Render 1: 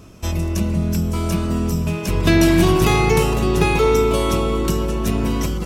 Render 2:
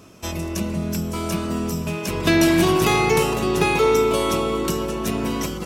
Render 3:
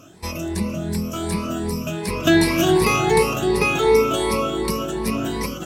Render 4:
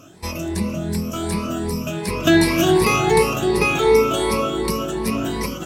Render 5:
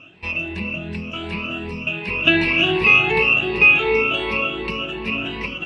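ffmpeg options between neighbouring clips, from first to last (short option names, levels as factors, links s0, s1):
-af "highpass=f=240:p=1"
-af "afftfilt=real='re*pow(10,14/40*sin(2*PI*(0.89*log(max(b,1)*sr/1024/100)/log(2)-(2.7)*(pts-256)/sr)))':imag='im*pow(10,14/40*sin(2*PI*(0.89*log(max(b,1)*sr/1024/100)/log(2)-(2.7)*(pts-256)/sr)))':win_size=1024:overlap=0.75,volume=0.794"
-af "flanger=delay=7:depth=6.1:regen=-90:speed=0.63:shape=sinusoidal,volume=1.88"
-af "lowpass=f=2700:t=q:w=15,volume=0.501"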